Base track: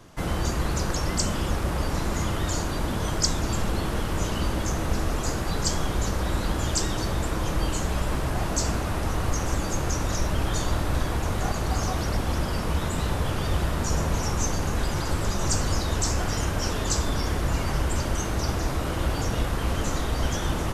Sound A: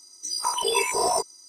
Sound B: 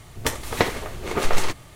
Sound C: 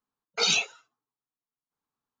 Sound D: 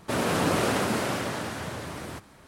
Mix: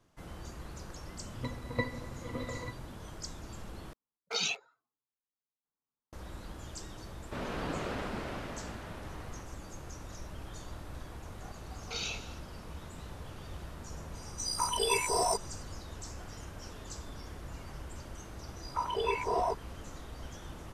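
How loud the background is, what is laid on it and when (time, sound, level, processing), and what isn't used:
base track -19 dB
1.18 add B -0.5 dB + octave resonator B, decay 0.12 s
3.93 replace with C -8 dB + Wiener smoothing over 15 samples
7.23 add D -12 dB + LPF 4200 Hz
11.53 add C -16.5 dB + per-bin compression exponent 0.4
14.15 add A -6 dB
18.32 add A -6 dB + LPF 2200 Hz

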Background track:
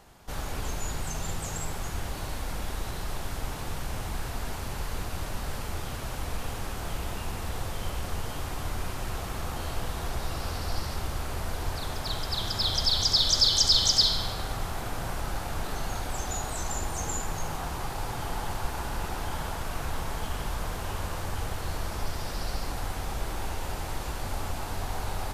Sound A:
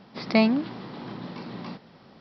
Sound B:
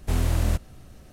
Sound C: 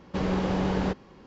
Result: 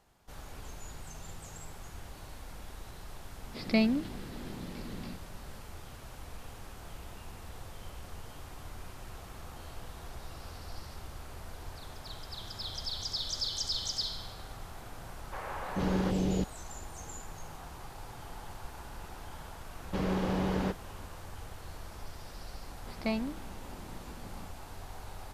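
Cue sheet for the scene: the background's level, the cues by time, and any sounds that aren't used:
background track -12.5 dB
3.39 add A -5 dB + bell 1000 Hz -11.5 dB 0.89 oct
15.18 add C -2.5 dB + three bands offset in time mids, lows, highs 0.44/0.47 s, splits 650/2400 Hz
19.79 add C -4.5 dB
22.71 add A -12.5 dB + mismatched tape noise reduction decoder only
not used: B

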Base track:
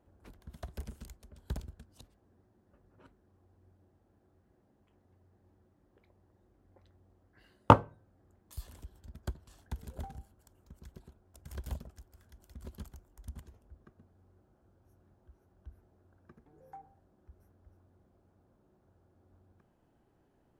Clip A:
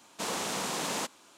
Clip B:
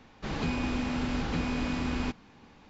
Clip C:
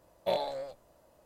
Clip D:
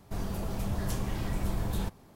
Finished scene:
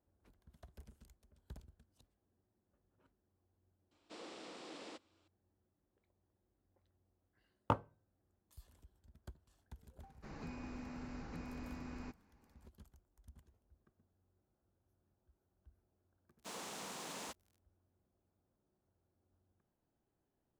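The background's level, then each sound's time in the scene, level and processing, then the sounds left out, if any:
base track -14.5 dB
3.91 add A -18 dB + speaker cabinet 170–6900 Hz, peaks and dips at 180 Hz -5 dB, 320 Hz +10 dB, 510 Hz +4 dB, 960 Hz -5 dB, 1600 Hz -3 dB, 6400 Hz -10 dB
10 add B -16.5 dB + bell 3300 Hz -14 dB 0.45 oct
16.26 add A -14 dB + requantised 8-bit, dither none
not used: C, D

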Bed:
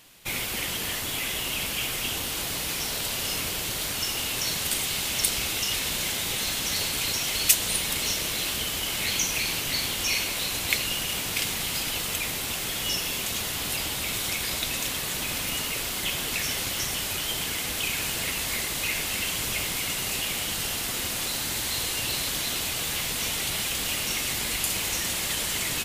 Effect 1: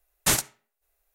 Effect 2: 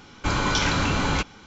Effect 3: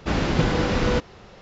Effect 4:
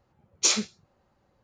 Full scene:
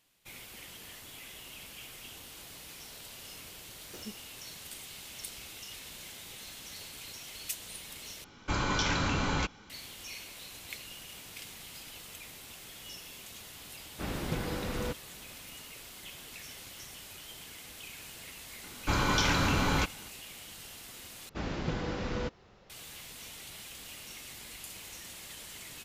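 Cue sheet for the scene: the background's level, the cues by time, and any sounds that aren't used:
bed -18 dB
3.49 add 4 -13 dB + median filter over 41 samples
8.24 replace with 2 -7 dB
13.93 add 3 -13.5 dB
18.63 add 2 -4.5 dB
21.29 replace with 3 -13 dB
not used: 1

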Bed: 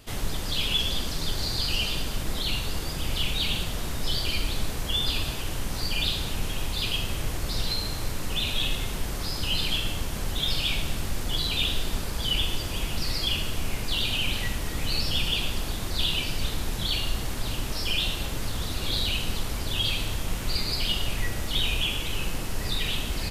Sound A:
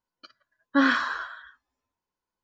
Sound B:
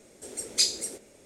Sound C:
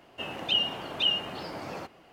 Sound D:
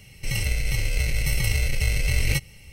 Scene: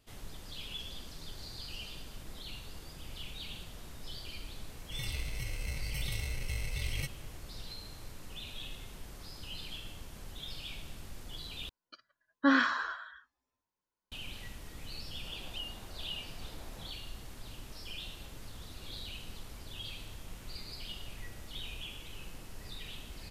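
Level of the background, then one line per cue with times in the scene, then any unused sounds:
bed -17 dB
4.68 add D -14 dB
11.69 replace with A -4.5 dB
15.05 add C -17 dB
not used: B

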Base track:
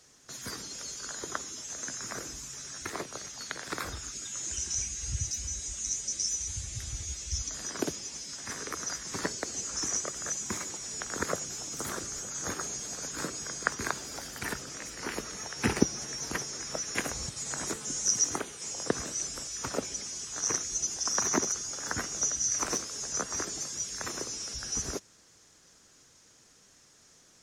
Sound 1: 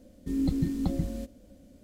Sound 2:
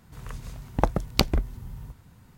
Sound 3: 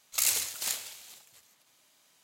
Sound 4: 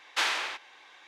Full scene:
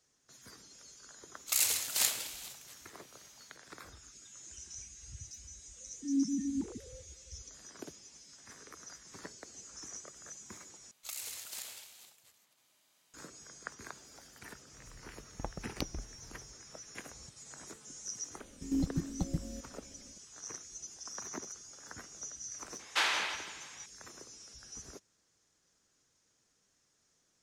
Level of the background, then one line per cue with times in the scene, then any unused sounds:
base track -15 dB
1.34 add 3 -3.5 dB + AGC gain up to 7.5 dB
5.76 add 1 -6 dB + sine-wave speech
10.91 replace with 3 -6 dB + compressor 4:1, threshold -33 dBFS
14.61 add 2 -18 dB
18.35 add 1 -1.5 dB + level quantiser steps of 14 dB
22.79 add 4 -2.5 dB + thinning echo 0.165 s, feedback 49%, level -11 dB

